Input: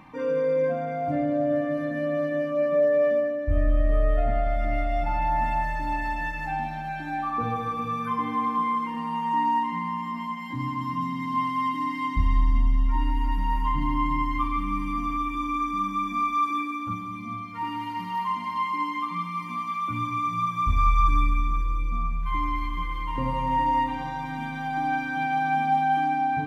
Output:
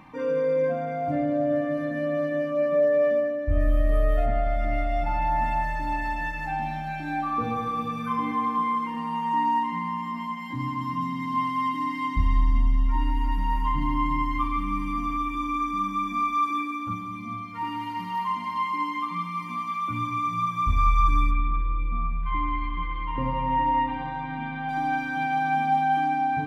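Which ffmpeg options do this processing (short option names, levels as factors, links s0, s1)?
-filter_complex "[0:a]asettb=1/sr,asplit=3[s0][s1][s2];[s0]atrim=end=3.604[s3];[s1]atrim=start=3.6:end=4.26,asetpts=PTS-STARTPTS,afade=t=in:d=0.004:c=qsin,afade=t=out:st=0.656:d=0.004:c=qsin,aemphasis=mode=production:type=50kf[s4];[s2]atrim=start=4.256[s5];[s3][s4]acrossfade=d=0.004:c1=hsin:c2=qsin[s6];[s6][s5]acrossfade=d=0.004:c1=qsin:c2=hsin,asettb=1/sr,asplit=3[s7][s8][s9];[s7]atrim=end=6.594[s10];[s8]atrim=start=6.59:end=8.32,asetpts=PTS-STARTPTS,afade=t=in:d=0.004:c=qsin,afade=t=out:st=1.726:d=0.004:c=qsin,asplit=2[s11][s12];[s12]adelay=31,volume=0.596[s13];[s11][s13]amix=inputs=2:normalize=0,atrim=end_sample=76293[s14];[s9]atrim=start=8.316[s15];[s10][s14]acrossfade=d=0.004:c1=hsin:c2=qsin[s16];[s16][s15]acrossfade=d=0.004:c1=qsin:c2=hsin,asettb=1/sr,asplit=3[s17][s18][s19];[s17]atrim=end=21.314[s20];[s18]atrim=start=21.31:end=24.69,asetpts=PTS-STARTPTS,afade=t=in:d=0.004:c=qsin,afade=t=out:st=3.376:d=0.004:c=qsin,lowpass=f=3400:w=0.5412,lowpass=f=3400:w=1.3066[s21];[s19]atrim=start=24.686[s22];[s20][s21]acrossfade=d=0.004:c1=hsin:c2=qsin[s23];[s23][s22]acrossfade=d=0.004:c1=qsin:c2=hsin"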